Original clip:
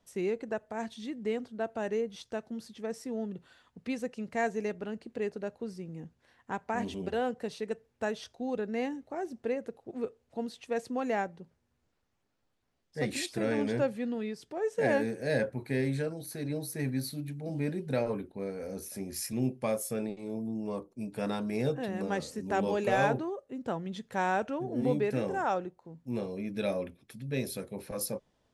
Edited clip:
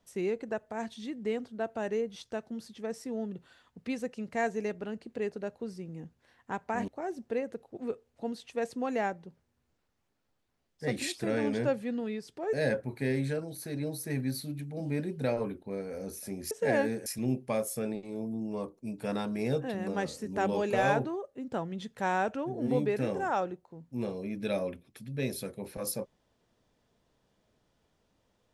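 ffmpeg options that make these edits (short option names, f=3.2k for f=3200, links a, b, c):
-filter_complex "[0:a]asplit=5[a][b][c][d][e];[a]atrim=end=6.882[f];[b]atrim=start=9.018:end=14.672[g];[c]atrim=start=15.218:end=19.202[h];[d]atrim=start=14.668:end=15.222[i];[e]atrim=start=19.198[j];[f][g]acrossfade=d=0.004:c1=hsin:c2=hsin[k];[k][h]acrossfade=d=0.004:c1=hsin:c2=hsin[l];[l][i]acrossfade=d=0.004:c1=hsin:c2=hsin[m];[m][j]acrossfade=d=0.004:c1=hsin:c2=hsin"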